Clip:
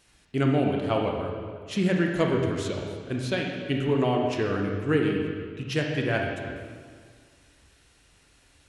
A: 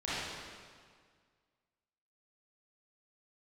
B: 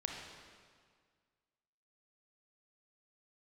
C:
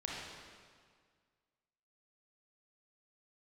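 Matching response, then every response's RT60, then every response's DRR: B; 1.8, 1.8, 1.8 s; -11.5, 0.5, -4.0 dB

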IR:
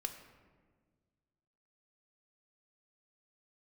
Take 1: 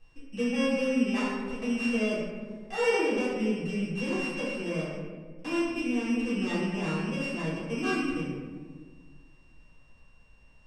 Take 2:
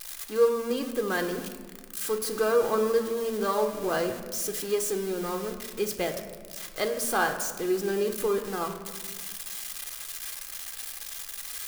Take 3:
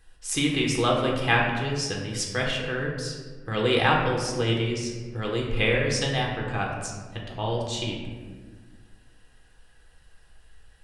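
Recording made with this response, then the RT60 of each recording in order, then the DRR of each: 2; 1.6, 1.6, 1.6 s; -9.0, 6.5, -1.0 dB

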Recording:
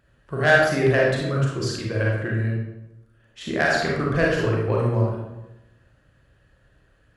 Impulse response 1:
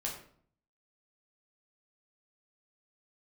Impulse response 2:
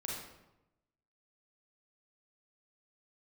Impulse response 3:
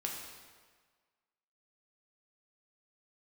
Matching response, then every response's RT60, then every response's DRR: 2; 0.55, 0.95, 1.6 s; -2.0, -3.5, -1.5 dB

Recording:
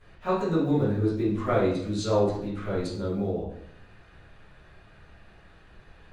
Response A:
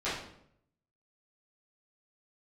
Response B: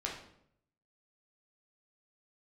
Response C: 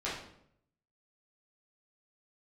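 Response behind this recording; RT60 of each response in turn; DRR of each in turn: A; 0.70, 0.70, 0.70 s; -13.5, -2.5, -9.5 dB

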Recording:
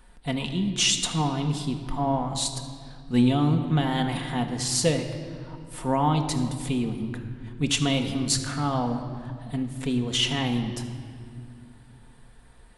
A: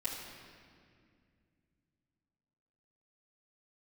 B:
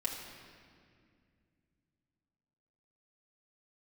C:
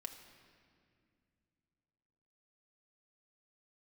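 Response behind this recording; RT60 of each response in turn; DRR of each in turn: C; 2.2, 2.2, 2.3 s; -11.5, -4.5, 3.0 dB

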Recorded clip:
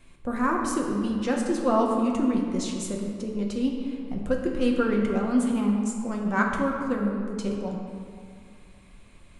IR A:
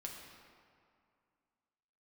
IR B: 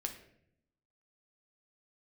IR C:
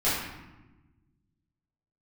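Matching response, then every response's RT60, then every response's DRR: A; 2.3, 0.70, 1.1 s; -0.5, 3.5, -11.5 dB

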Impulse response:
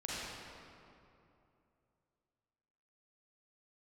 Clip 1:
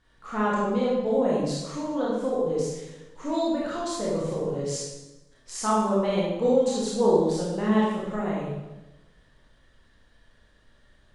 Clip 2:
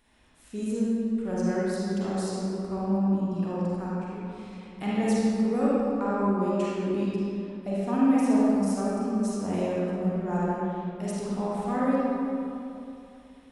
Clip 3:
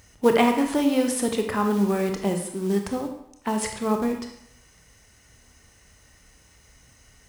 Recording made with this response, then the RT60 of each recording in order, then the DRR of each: 2; 1.1, 2.8, 0.75 s; -6.5, -8.0, 4.0 dB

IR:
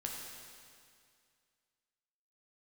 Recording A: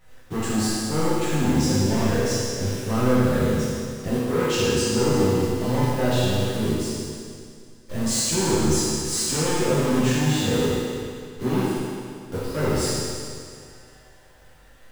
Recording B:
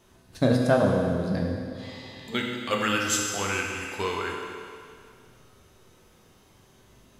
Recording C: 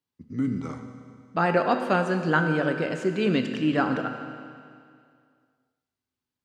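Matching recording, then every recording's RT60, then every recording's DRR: B; 2.2, 2.2, 2.2 s; -11.0, -1.0, 5.5 dB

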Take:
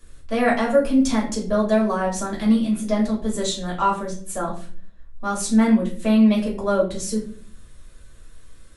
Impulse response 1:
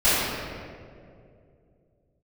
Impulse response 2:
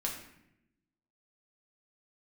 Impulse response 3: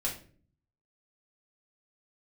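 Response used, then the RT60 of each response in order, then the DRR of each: 3; 2.4, 0.80, 0.45 s; -17.5, -1.5, -4.0 dB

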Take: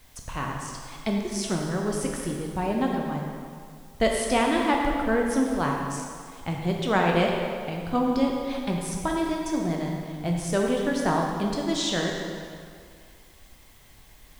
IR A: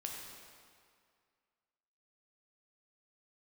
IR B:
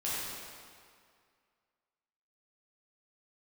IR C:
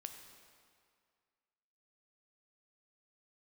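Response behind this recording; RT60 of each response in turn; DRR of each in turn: A; 2.1, 2.1, 2.1 s; -0.5, -9.0, 5.5 dB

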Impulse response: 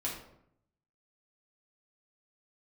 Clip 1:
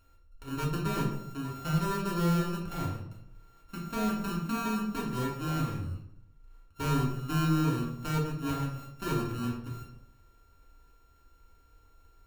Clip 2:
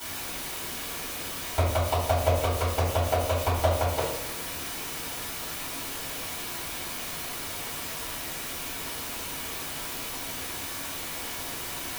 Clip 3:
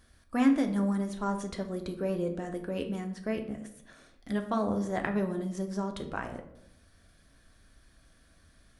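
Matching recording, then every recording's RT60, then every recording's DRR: 1; 0.75, 0.70, 0.75 s; -5.0, -13.5, 4.5 dB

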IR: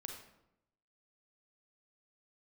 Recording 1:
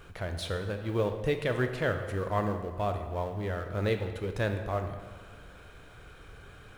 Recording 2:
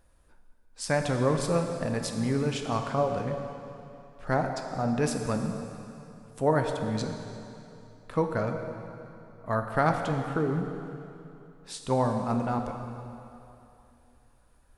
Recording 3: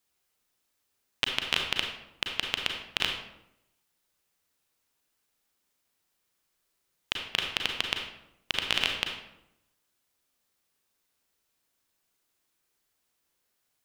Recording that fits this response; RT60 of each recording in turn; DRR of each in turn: 3; 1.6, 2.9, 0.85 s; 6.0, 4.0, 2.0 dB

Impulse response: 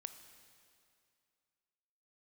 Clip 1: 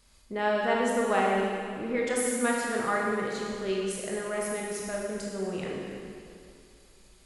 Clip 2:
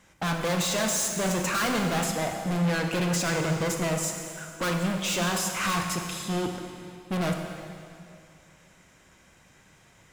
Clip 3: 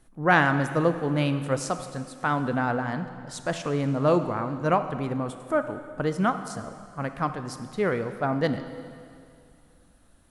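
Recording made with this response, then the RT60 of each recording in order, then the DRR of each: 3; 2.4, 2.4, 2.4 s; -3.0, 3.0, 9.0 dB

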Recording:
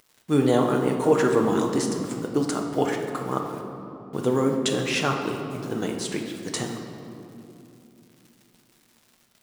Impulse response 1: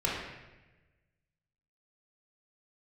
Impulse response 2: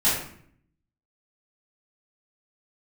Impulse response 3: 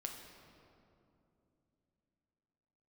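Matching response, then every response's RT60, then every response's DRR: 3; 1.1, 0.60, 2.9 s; -6.0, -11.0, 1.5 dB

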